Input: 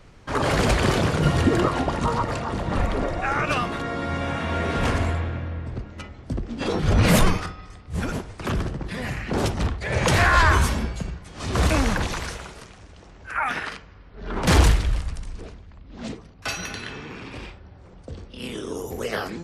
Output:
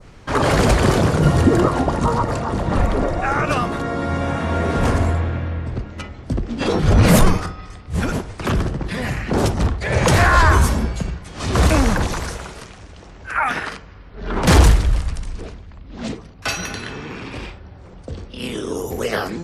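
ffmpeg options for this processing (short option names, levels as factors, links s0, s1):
-af "acontrast=27,adynamicequalizer=threshold=0.0158:dfrequency=2800:dqfactor=0.75:tfrequency=2800:tqfactor=0.75:attack=5:release=100:ratio=0.375:range=4:mode=cutabove:tftype=bell,volume=1.12"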